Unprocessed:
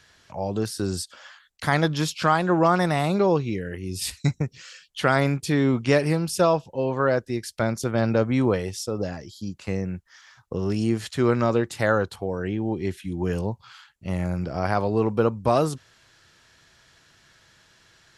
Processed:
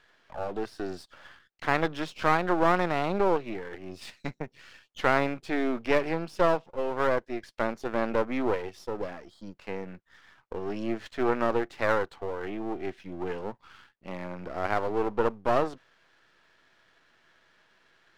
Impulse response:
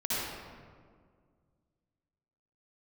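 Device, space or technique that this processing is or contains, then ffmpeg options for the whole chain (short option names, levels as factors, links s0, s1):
crystal radio: -af "highpass=280,lowpass=2600,aeval=exprs='if(lt(val(0),0),0.251*val(0),val(0))':c=same"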